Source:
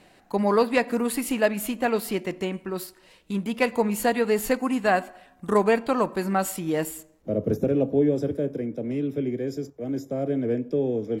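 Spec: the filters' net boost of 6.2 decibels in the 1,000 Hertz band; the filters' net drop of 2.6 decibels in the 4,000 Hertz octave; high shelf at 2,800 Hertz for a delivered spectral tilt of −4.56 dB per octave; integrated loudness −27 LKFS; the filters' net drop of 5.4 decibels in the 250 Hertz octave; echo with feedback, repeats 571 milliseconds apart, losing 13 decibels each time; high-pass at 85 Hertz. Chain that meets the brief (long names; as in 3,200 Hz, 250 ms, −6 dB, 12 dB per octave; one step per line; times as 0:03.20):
high-pass filter 85 Hz
parametric band 250 Hz −7 dB
parametric band 1,000 Hz +8.5 dB
high-shelf EQ 2,800 Hz +5 dB
parametric band 4,000 Hz −8.5 dB
repeating echo 571 ms, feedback 22%, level −13 dB
level −2.5 dB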